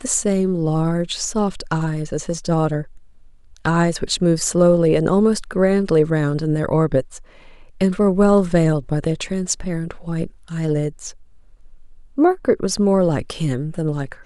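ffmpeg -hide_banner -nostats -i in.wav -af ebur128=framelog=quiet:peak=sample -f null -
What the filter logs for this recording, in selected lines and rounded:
Integrated loudness:
  I:         -19.3 LUFS
  Threshold: -29.9 LUFS
Loudness range:
  LRA:         5.8 LU
  Threshold: -39.8 LUFS
  LRA low:   -23.3 LUFS
  LRA high:  -17.4 LUFS
Sample peak:
  Peak:       -3.2 dBFS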